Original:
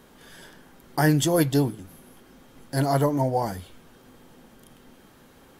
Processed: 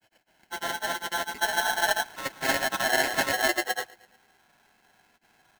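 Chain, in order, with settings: Doppler pass-by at 2.2, 36 m/s, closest 23 m; HPF 280 Hz 6 dB/oct; comb 2.2 ms, depth 42%; level quantiser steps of 14 dB; polynomial smoothing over 41 samples; non-linear reverb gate 0.35 s rising, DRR -5.5 dB; grains, spray 0.566 s; feedback echo 0.112 s, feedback 53%, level -23 dB; polarity switched at an audio rate 1200 Hz; gain +2 dB

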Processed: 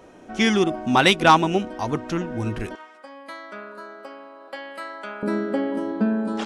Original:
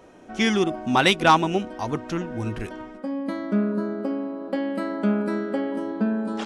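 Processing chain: 2.75–5.23 HPF 1000 Hz 12 dB/oct; gain +2 dB

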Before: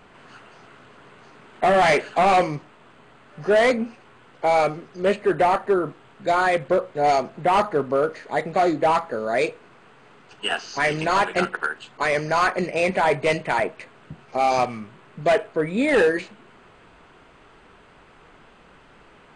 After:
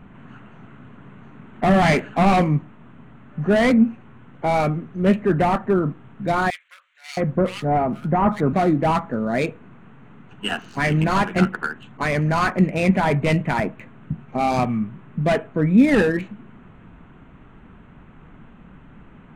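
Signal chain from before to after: Wiener smoothing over 9 samples; resonant low shelf 310 Hz +10.5 dB, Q 1.5; 6.5–8.53 bands offset in time highs, lows 0.67 s, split 2000 Hz

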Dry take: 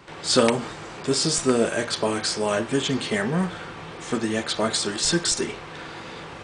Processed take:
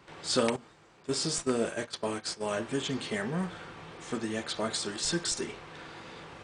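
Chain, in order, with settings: 0.56–2.54 gate -25 dBFS, range -13 dB; gain -8.5 dB

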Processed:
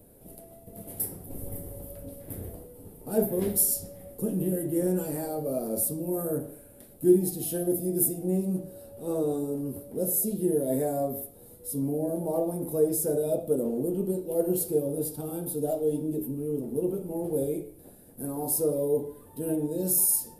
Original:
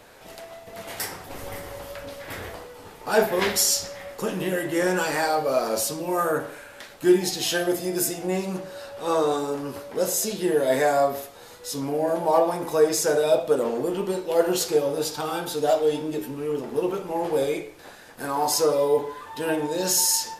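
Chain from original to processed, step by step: EQ curve 240 Hz 0 dB, 650 Hz -12 dB, 1000 Hz -25 dB, 1800 Hz -28 dB, 3800 Hz -24 dB, 6600 Hz -22 dB, 10000 Hz +1 dB; gain +2.5 dB

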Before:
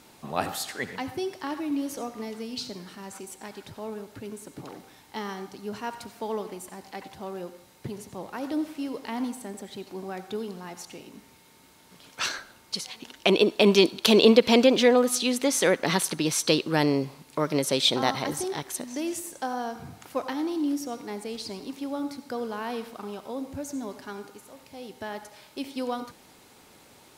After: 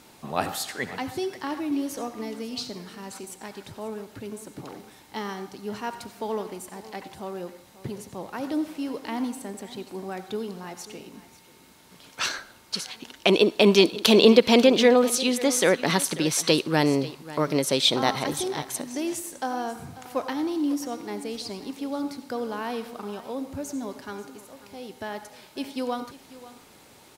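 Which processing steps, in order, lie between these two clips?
echo 0.54 s -17 dB; gain +1.5 dB

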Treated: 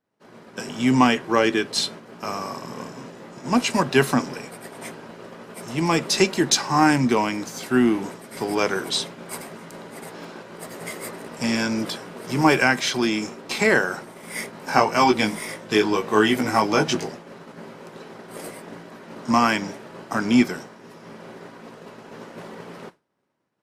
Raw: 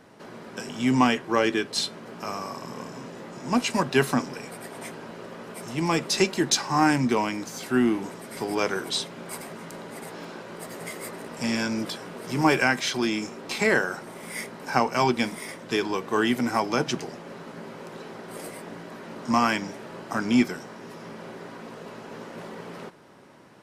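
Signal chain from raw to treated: 14.51–17.08 doubler 19 ms -3 dB; expander -35 dBFS; gain +3.5 dB

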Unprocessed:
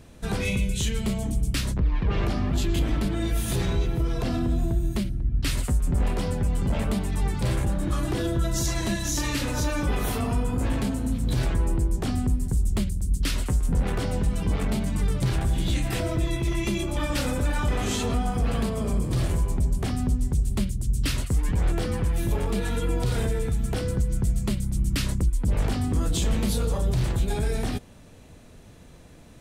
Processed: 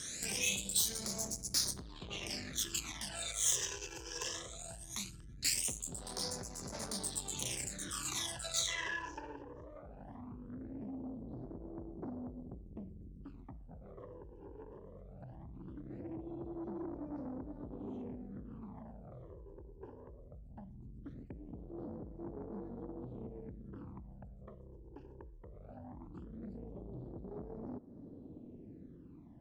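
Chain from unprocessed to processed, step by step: low-pass sweep 7100 Hz -> 310 Hz, 8.42–9.46; in parallel at +2.5 dB: limiter -19.5 dBFS, peak gain reduction 7 dB; on the sum: compressor 16:1, threshold -26 dBFS, peak gain reduction 14.5 dB; soft clip -29 dBFS, distortion -14 dB; phaser stages 12, 0.19 Hz, lowest notch 210–3000 Hz; tilt +4.5 dB/oct; on a send at -20 dB: reverb RT60 0.50 s, pre-delay 10 ms; on the sum: gain -1.5 dB

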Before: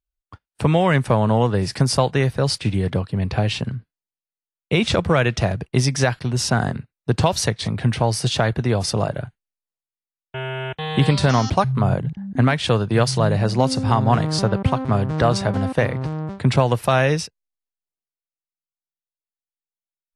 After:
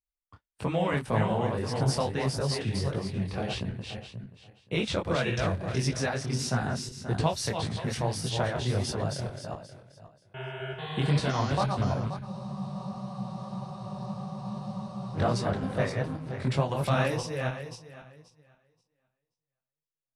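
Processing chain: regenerating reverse delay 0.265 s, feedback 42%, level -4 dB; spectral freeze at 12.25, 2.89 s; detuned doubles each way 58 cents; gain -7 dB

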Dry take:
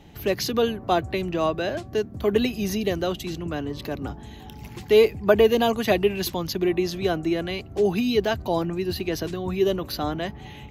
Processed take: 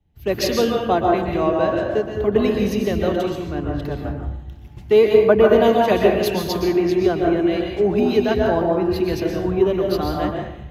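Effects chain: bit-crush 11-bit; high shelf 3000 Hz -10.5 dB; on a send: band-limited delay 0.156 s, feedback 72%, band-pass 930 Hz, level -16 dB; on the sum: plate-style reverb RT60 1 s, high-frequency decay 0.65×, pre-delay 0.11 s, DRR -0.5 dB; compressor 2:1, threshold -21 dBFS, peak gain reduction 6 dB; three-band expander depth 100%; gain +5.5 dB

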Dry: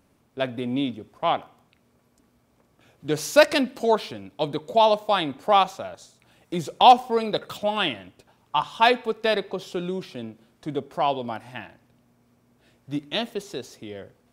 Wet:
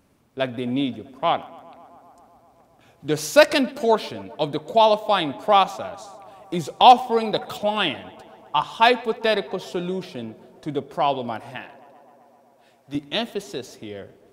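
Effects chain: 11.56–12.95 HPF 360 Hz 6 dB/oct; tape echo 0.131 s, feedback 87%, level -21.5 dB, low-pass 2600 Hz; gain +2 dB

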